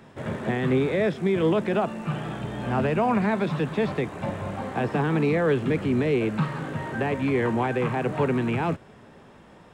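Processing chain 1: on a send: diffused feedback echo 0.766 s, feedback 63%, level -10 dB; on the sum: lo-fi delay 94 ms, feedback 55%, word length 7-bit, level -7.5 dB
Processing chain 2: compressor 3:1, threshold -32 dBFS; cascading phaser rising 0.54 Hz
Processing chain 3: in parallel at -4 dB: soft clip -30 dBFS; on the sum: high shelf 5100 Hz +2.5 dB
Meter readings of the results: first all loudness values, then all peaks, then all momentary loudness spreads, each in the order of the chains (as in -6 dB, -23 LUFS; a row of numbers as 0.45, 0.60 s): -24.5, -34.5, -23.5 LUFS; -10.5, -22.0, -11.5 dBFS; 7, 4, 7 LU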